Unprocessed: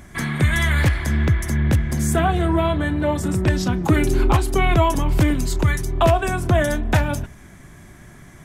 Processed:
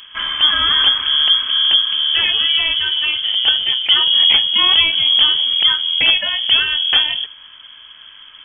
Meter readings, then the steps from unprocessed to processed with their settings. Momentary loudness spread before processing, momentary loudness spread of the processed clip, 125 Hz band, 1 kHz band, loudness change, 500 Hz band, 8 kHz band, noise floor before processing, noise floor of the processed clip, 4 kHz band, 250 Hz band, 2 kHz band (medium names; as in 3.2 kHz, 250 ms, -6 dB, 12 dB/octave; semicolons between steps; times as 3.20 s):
3 LU, 5 LU, under -25 dB, -5.0 dB, +7.5 dB, -17.0 dB, under -40 dB, -44 dBFS, -41 dBFS, +25.5 dB, under -20 dB, +5.0 dB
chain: dynamic bell 820 Hz, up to -6 dB, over -36 dBFS, Q 2; frequency inversion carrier 3.3 kHz; trim +2.5 dB